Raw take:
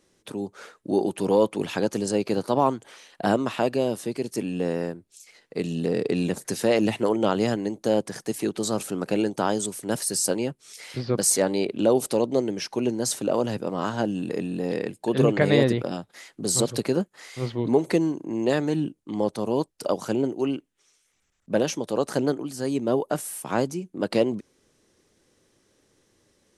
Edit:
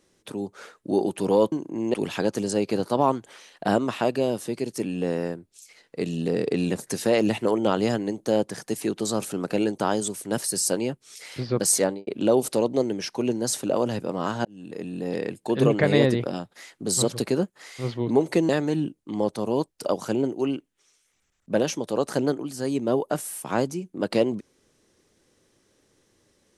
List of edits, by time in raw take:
11.4–11.65 studio fade out
14.03–15.05 fade in equal-power
18.07–18.49 move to 1.52

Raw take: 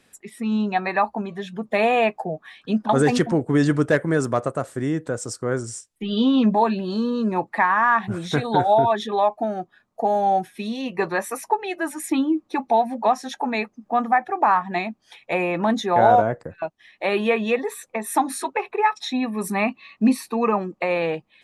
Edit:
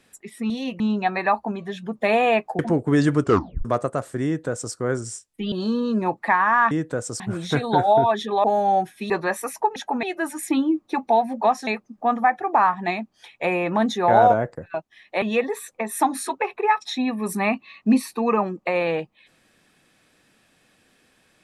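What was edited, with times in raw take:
2.29–3.21 cut
3.84 tape stop 0.43 s
4.87–5.36 copy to 8.01
6.14–6.82 cut
9.25–10.02 cut
10.68–10.98 move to 0.5
13.28–13.55 move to 11.64
17.1–17.37 cut

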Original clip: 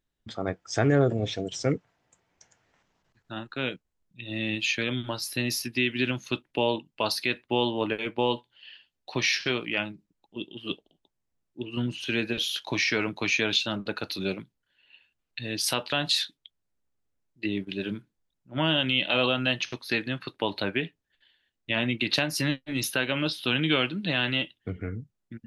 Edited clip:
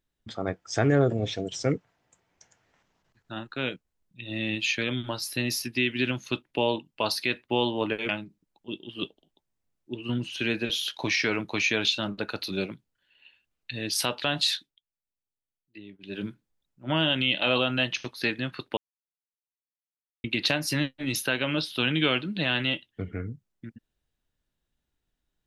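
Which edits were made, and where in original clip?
8.09–9.77 cut
16.23–17.93 dip -16 dB, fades 0.24 s
20.45–21.92 mute

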